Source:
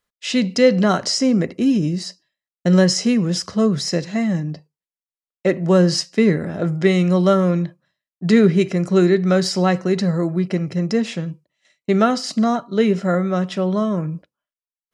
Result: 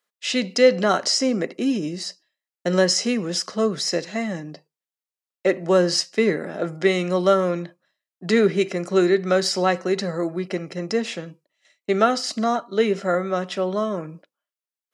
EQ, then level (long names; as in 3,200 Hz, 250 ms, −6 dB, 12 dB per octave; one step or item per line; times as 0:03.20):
high-pass filter 330 Hz 12 dB per octave
notch filter 1,000 Hz, Q 22
0.0 dB